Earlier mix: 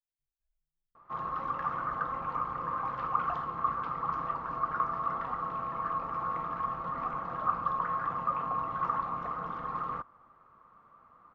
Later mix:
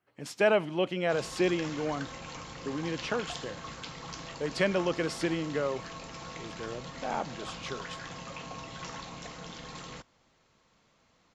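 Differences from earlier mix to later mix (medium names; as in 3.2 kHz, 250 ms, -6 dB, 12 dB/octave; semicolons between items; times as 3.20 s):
speech: remove inverse Chebyshev band-stop 200–9900 Hz, stop band 80 dB; background: remove resonant low-pass 1.2 kHz, resonance Q 12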